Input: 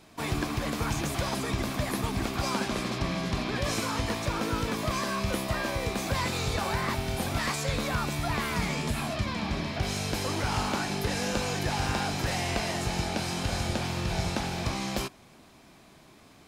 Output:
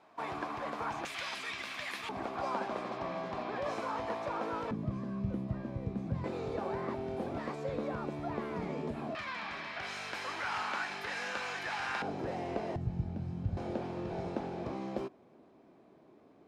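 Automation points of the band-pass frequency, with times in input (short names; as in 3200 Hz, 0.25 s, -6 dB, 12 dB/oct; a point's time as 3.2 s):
band-pass, Q 1.3
890 Hz
from 1.05 s 2400 Hz
from 2.09 s 740 Hz
from 4.71 s 160 Hz
from 6.24 s 410 Hz
from 9.15 s 1600 Hz
from 12.02 s 420 Hz
from 12.76 s 110 Hz
from 13.57 s 410 Hz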